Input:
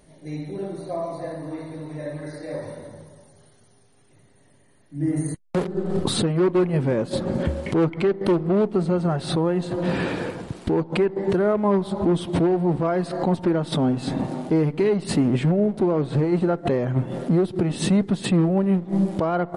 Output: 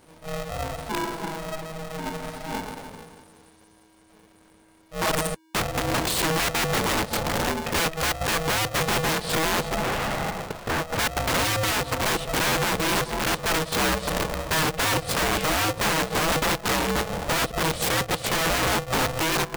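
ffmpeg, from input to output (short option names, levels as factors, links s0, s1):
-filter_complex "[0:a]aeval=exprs='(mod(8.41*val(0)+1,2)-1)/8.41':c=same,asettb=1/sr,asplit=3[s0][s1][s2];[s0]atrim=end=9.774[s3];[s1]atrim=start=9.77:end=10.99,asetpts=PTS-STARTPTS,afade=t=in:d=0.004:c=qsin,afade=t=out:st=1.216:d=0.004:c=qsin,asplit=2[s4][s5];[s5]highpass=f=720:p=1,volume=5.62,asoftclip=type=tanh:threshold=0.126[s6];[s4][s6]amix=inputs=2:normalize=0,lowpass=f=1100:p=1,volume=0.501[s7];[s2]atrim=start=10.986[s8];[s3][s7]acrossfade=d=0.004:c1=hsin:c2=qsin[s9];[s9][s8]acrossfade=d=0.004:c1=qsin:c2=hsin,aeval=exprs='val(0)*sgn(sin(2*PI*320*n/s))':c=same"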